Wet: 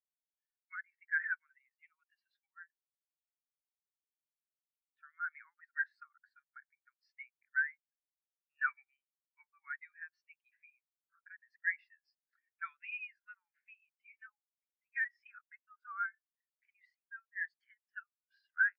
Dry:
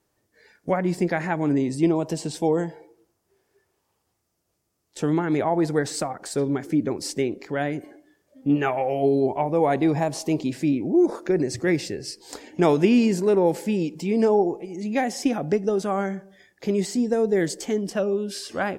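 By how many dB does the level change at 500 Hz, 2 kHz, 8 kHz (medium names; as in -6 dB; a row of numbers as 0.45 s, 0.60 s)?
under -40 dB, -2.0 dB, under -40 dB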